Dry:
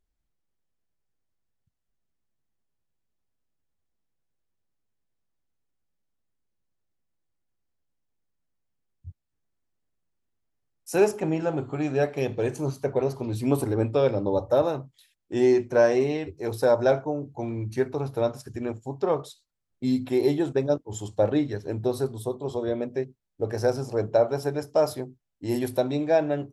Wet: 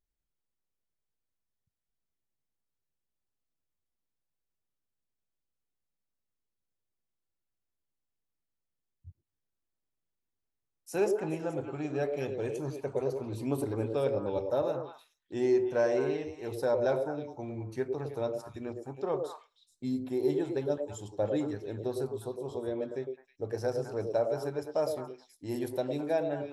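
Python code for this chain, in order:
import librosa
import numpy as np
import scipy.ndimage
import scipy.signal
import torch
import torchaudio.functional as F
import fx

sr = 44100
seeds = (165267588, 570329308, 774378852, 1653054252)

y = fx.echo_stepped(x, sr, ms=106, hz=430.0, octaves=1.4, feedback_pct=70, wet_db=-2.0)
y = fx.dynamic_eq(y, sr, hz=2600.0, q=0.77, threshold_db=-46.0, ratio=4.0, max_db=-7, at=(19.87, 20.3))
y = y * 10.0 ** (-8.5 / 20.0)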